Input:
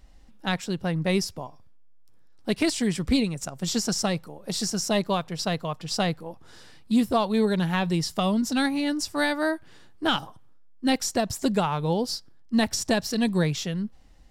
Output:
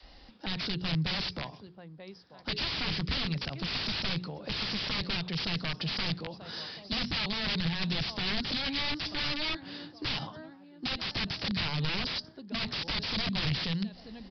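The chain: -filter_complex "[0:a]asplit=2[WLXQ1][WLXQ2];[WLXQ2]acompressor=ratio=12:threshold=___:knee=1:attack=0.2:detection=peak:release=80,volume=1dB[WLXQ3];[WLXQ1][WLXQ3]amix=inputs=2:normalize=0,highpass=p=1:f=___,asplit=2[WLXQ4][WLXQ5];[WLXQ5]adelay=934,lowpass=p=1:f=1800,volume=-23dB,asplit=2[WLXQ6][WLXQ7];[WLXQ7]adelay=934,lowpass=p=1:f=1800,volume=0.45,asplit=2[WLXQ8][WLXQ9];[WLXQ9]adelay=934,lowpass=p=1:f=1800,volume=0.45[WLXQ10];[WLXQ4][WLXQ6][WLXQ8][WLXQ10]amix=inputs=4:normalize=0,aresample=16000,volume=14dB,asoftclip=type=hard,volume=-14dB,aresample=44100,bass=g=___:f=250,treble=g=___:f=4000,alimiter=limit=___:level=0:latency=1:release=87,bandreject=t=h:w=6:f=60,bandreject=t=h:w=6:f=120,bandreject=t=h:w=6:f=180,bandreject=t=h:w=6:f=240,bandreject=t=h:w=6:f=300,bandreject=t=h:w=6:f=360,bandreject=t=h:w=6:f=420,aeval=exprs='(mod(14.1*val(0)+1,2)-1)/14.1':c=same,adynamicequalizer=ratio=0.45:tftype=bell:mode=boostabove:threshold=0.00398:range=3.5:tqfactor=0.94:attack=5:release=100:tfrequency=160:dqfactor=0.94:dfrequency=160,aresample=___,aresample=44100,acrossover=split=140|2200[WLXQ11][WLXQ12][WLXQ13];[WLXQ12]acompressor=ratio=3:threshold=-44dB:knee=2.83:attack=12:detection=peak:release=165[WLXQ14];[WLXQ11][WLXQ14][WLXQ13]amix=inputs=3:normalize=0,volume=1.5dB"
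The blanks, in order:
-33dB, 40, -7, 12, -11.5dB, 11025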